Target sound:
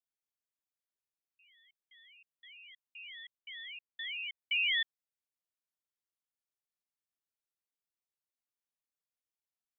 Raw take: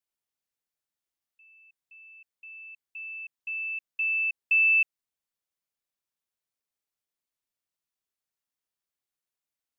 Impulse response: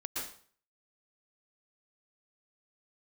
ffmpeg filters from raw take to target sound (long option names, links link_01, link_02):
-filter_complex "[0:a]asettb=1/sr,asplit=3[link_01][link_02][link_03];[link_01]atrim=end=3.374[link_04];[link_02]atrim=start=3.37:end=4.39,asetpts=PTS-STARTPTS,afade=type=in:duration=0.004:curve=qsin,afade=type=out:start_time=1.016:duration=0.004:curve=qsin,lowpass=2500[link_05];[link_03]atrim=start=4.386[link_06];[link_04][link_05]acrossfade=duration=0.004:curve1=hsin:curve2=qsin[link_07];[link_07][link_06]acrossfade=duration=0.004:curve1=qsin:curve2=hsin,aeval=exprs='val(0)*sin(2*PI*460*n/s+460*0.8/2.5*sin(2*PI*2.5*n/s))':channel_layout=same,volume=-6.5dB"